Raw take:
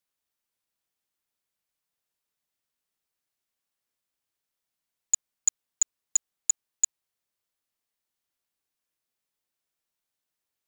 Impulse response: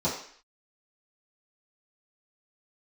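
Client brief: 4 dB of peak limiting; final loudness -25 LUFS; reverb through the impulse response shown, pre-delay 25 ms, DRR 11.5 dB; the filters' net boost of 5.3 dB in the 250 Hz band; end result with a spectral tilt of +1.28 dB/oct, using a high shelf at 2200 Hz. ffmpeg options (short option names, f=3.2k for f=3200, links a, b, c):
-filter_complex "[0:a]equalizer=f=250:t=o:g=6.5,highshelf=f=2.2k:g=4.5,alimiter=limit=-12.5dB:level=0:latency=1,asplit=2[a][b];[1:a]atrim=start_sample=2205,adelay=25[c];[b][c]afir=irnorm=-1:irlink=0,volume=-22dB[d];[a][d]amix=inputs=2:normalize=0,volume=2.5dB"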